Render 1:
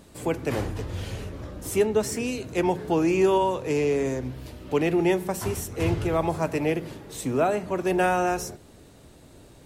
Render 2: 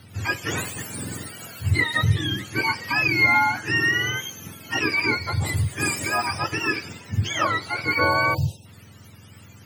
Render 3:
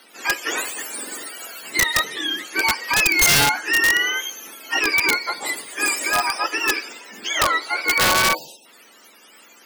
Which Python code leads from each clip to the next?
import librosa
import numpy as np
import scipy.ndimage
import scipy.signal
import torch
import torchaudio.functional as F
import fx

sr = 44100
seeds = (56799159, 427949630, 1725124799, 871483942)

y1 = fx.octave_mirror(x, sr, pivot_hz=900.0)
y1 = fx.spec_erase(y1, sr, start_s=8.34, length_s=0.32, low_hz=960.0, high_hz=2500.0)
y1 = F.gain(torch.from_numpy(y1), 4.0).numpy()
y2 = scipy.signal.sosfilt(scipy.signal.bessel(8, 470.0, 'highpass', norm='mag', fs=sr, output='sos'), y1)
y2 = (np.mod(10.0 ** (14.5 / 20.0) * y2 + 1.0, 2.0) - 1.0) / 10.0 ** (14.5 / 20.0)
y2 = F.gain(torch.from_numpy(y2), 4.5).numpy()